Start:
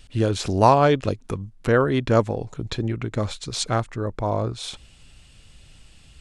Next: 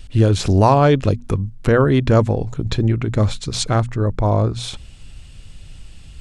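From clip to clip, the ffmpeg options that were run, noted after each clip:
-filter_complex "[0:a]asplit=2[s0][s1];[s1]alimiter=limit=0.224:level=0:latency=1,volume=1.19[s2];[s0][s2]amix=inputs=2:normalize=0,lowshelf=f=190:g=9.5,bandreject=f=60:t=h:w=6,bandreject=f=120:t=h:w=6,bandreject=f=180:t=h:w=6,bandreject=f=240:t=h:w=6,volume=0.708"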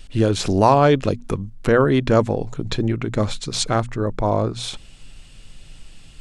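-af "equalizer=f=69:t=o:w=1.4:g=-13.5"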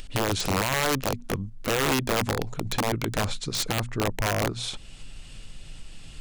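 -filter_complex "[0:a]asplit=2[s0][s1];[s1]acompressor=mode=upward:threshold=0.0631:ratio=2.5,volume=0.891[s2];[s0][s2]amix=inputs=2:normalize=0,alimiter=limit=0.422:level=0:latency=1:release=33,aeval=exprs='(mod(2.82*val(0)+1,2)-1)/2.82':c=same,volume=0.355"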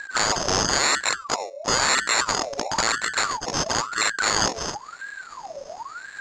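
-af "acrusher=samples=28:mix=1:aa=0.000001,lowpass=f=5800:t=q:w=14,aeval=exprs='val(0)*sin(2*PI*1100*n/s+1100*0.5/0.98*sin(2*PI*0.98*n/s))':c=same,volume=1.58"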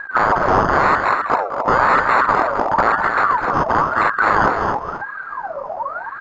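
-af "lowpass=f=1200:t=q:w=1.8,aecho=1:1:204.1|265.3:0.282|0.447,volume=2.11"

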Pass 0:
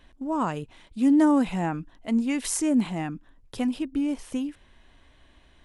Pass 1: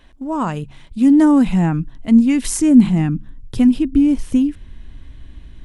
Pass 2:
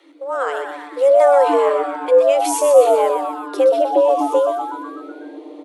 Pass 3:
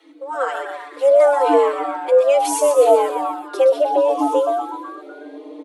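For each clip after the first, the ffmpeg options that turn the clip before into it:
-af "bandreject=f=69.38:t=h:w=4,bandreject=f=138.76:t=h:w=4,bandreject=f=208.14:t=h:w=4,asubboost=boost=7.5:cutoff=240,volume=1.88"
-filter_complex "[0:a]afreqshift=280,asplit=2[s0][s1];[s1]asplit=7[s2][s3][s4][s5][s6][s7][s8];[s2]adelay=124,afreqshift=150,volume=0.447[s9];[s3]adelay=248,afreqshift=300,volume=0.251[s10];[s4]adelay=372,afreqshift=450,volume=0.14[s11];[s5]adelay=496,afreqshift=600,volume=0.0785[s12];[s6]adelay=620,afreqshift=750,volume=0.0442[s13];[s7]adelay=744,afreqshift=900,volume=0.0245[s14];[s8]adelay=868,afreqshift=1050,volume=0.0138[s15];[s9][s10][s11][s12][s13][s14][s15]amix=inputs=7:normalize=0[s16];[s0][s16]amix=inputs=2:normalize=0,volume=0.841"
-filter_complex "[0:a]asplit=2[s0][s1];[s1]adelay=4.2,afreqshift=0.71[s2];[s0][s2]amix=inputs=2:normalize=1,volume=1.33"

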